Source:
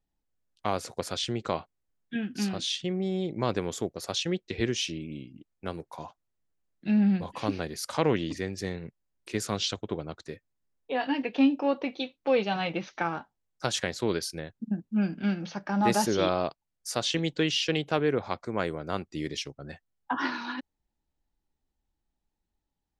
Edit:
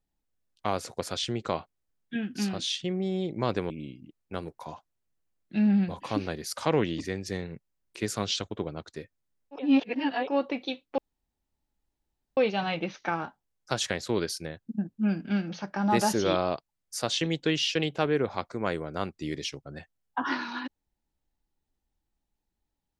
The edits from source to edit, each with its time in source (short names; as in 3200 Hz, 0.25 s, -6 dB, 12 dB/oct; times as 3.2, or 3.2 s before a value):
3.7–5.02 cut
10.91–11.59 reverse, crossfade 0.16 s
12.3 insert room tone 1.39 s